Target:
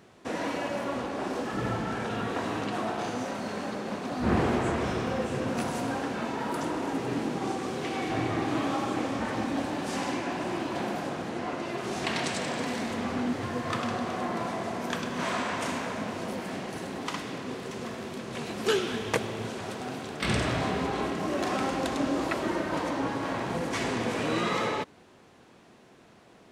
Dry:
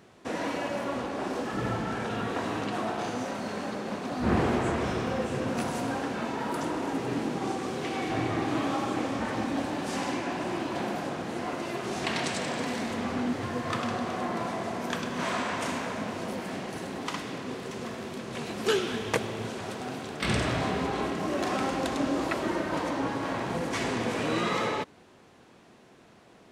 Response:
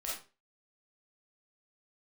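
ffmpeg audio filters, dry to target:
-filter_complex "[0:a]asettb=1/sr,asplit=3[a][b][c];[a]atrim=end=11.294[d];[b]atrim=start=11.29:end=11.78,asetpts=PTS-STARTPTS,afade=t=in:d=0.004:c=qsin,afade=t=out:st=0.486:d=0.004:c=qsin,highshelf=f=9.9k:g=-12[e];[c]atrim=start=11.776[f];[d][e]acrossfade=d=0.004:c1=hsin:c2=qsin[g];[g][f]acrossfade=d=0.004:c1=qsin:c2=hsin"

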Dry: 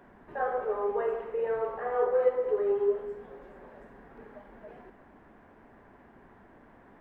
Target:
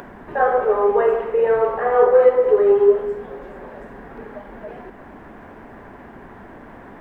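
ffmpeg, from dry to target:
-af "apsyclip=17.5dB,acompressor=mode=upward:threshold=-30dB:ratio=2.5,volume=-4.5dB"

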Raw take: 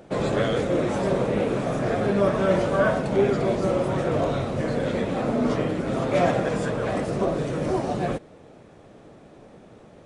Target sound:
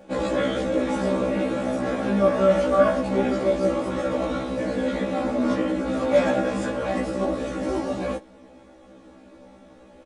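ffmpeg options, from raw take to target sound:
-af "aecho=1:1:3.6:0.85,afftfilt=real='re*1.73*eq(mod(b,3),0)':imag='im*1.73*eq(mod(b,3),0)':win_size=2048:overlap=0.75"

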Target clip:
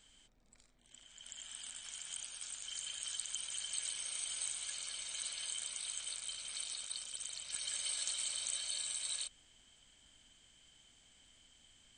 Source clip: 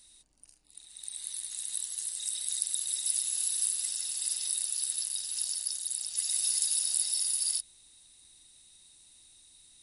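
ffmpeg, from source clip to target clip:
-af "bass=f=250:g=-1,treble=f=4k:g=-14,asetrate=36162,aresample=44100,volume=2.5dB"

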